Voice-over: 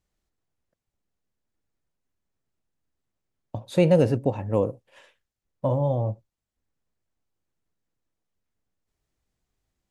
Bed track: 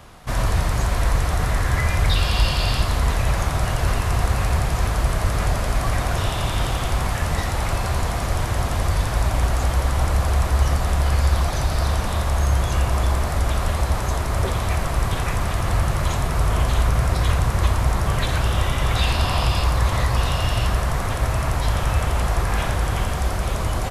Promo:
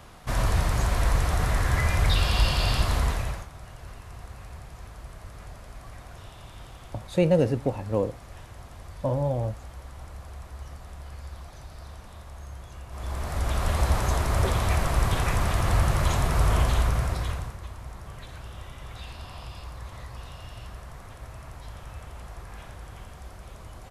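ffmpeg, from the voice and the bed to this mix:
-filter_complex "[0:a]adelay=3400,volume=-2.5dB[a];[1:a]volume=16.5dB,afade=t=out:st=2.97:d=0.5:silence=0.11885,afade=t=in:st=12.89:d=0.97:silence=0.1,afade=t=out:st=16.54:d=1.04:silence=0.11885[b];[a][b]amix=inputs=2:normalize=0"

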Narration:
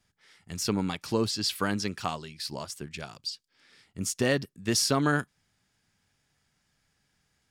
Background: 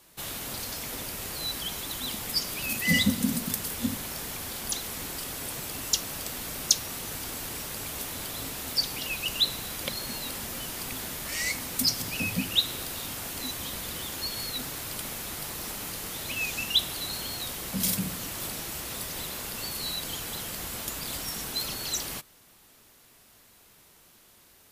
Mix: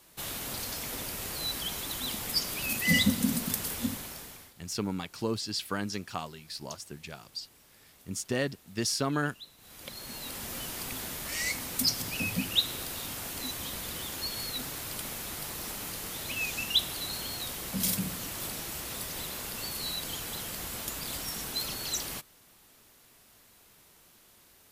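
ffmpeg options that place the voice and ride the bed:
-filter_complex "[0:a]adelay=4100,volume=-4.5dB[a];[1:a]volume=20.5dB,afade=t=out:st=3.71:d=0.83:silence=0.0749894,afade=t=in:st=9.57:d=0.99:silence=0.0841395[b];[a][b]amix=inputs=2:normalize=0"

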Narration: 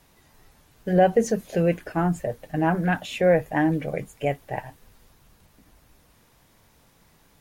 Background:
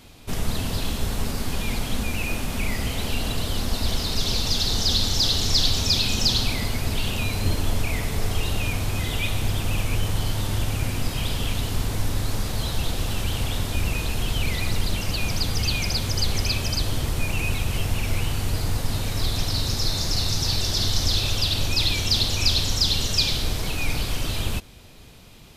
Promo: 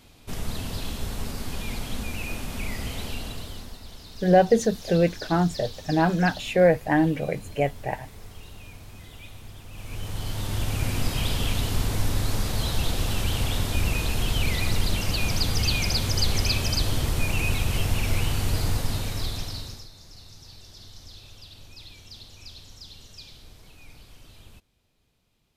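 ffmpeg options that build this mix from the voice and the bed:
-filter_complex "[0:a]adelay=3350,volume=1dB[a];[1:a]volume=13.5dB,afade=t=out:st=2.97:d=0.83:silence=0.211349,afade=t=in:st=9.71:d=1.28:silence=0.112202,afade=t=out:st=18.67:d=1.21:silence=0.0668344[b];[a][b]amix=inputs=2:normalize=0"

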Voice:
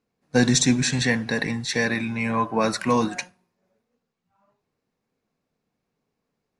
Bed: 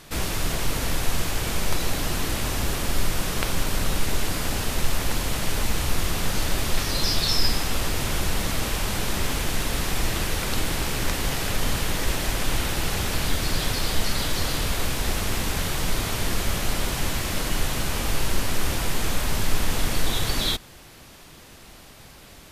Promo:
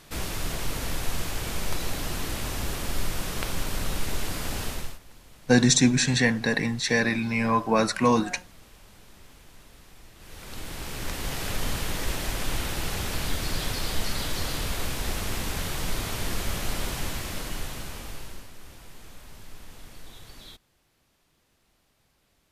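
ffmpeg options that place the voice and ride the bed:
-filter_complex "[0:a]adelay=5150,volume=0dB[a];[1:a]volume=16.5dB,afade=t=out:st=4.66:d=0.33:silence=0.0891251,afade=t=in:st=10.17:d=1.32:silence=0.0841395,afade=t=out:st=16.88:d=1.63:silence=0.133352[b];[a][b]amix=inputs=2:normalize=0"

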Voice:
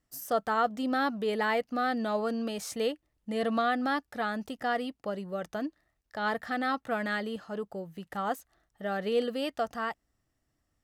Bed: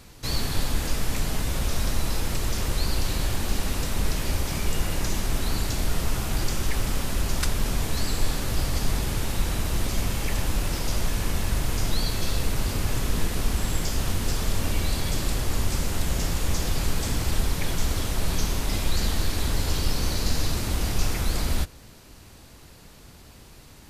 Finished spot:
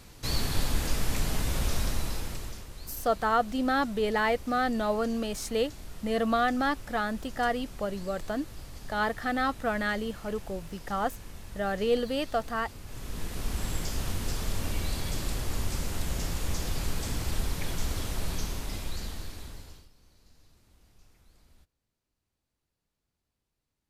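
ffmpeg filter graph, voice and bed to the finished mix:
-filter_complex "[0:a]adelay=2750,volume=2dB[a];[1:a]volume=10dB,afade=t=out:st=1.69:d=0.97:silence=0.158489,afade=t=in:st=12.85:d=0.79:silence=0.237137,afade=t=out:st=18.13:d=1.76:silence=0.0316228[b];[a][b]amix=inputs=2:normalize=0"

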